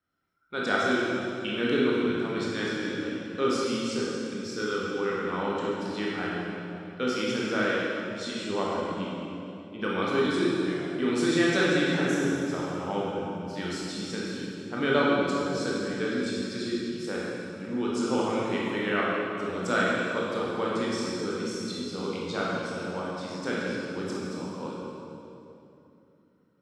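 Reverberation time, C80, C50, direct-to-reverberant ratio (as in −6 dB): 2.9 s, −1.0 dB, −3.0 dB, −6.0 dB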